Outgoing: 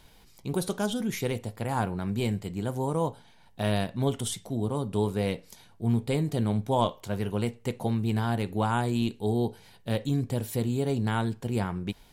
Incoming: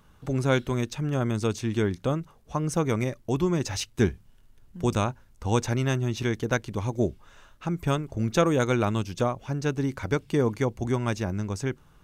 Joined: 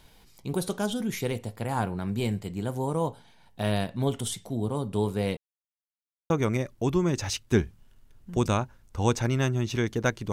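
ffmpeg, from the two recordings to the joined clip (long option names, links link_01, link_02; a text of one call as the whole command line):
ffmpeg -i cue0.wav -i cue1.wav -filter_complex "[0:a]apad=whole_dur=10.32,atrim=end=10.32,asplit=2[link_01][link_02];[link_01]atrim=end=5.37,asetpts=PTS-STARTPTS,afade=type=out:start_time=5.366:duration=0.004:curve=hsin[link_03];[link_02]atrim=start=5.37:end=6.3,asetpts=PTS-STARTPTS,volume=0[link_04];[1:a]atrim=start=2.77:end=6.79,asetpts=PTS-STARTPTS,afade=type=in:duration=0.004:curve=hsin[link_05];[link_03][link_04][link_05]concat=n=3:v=0:a=1" out.wav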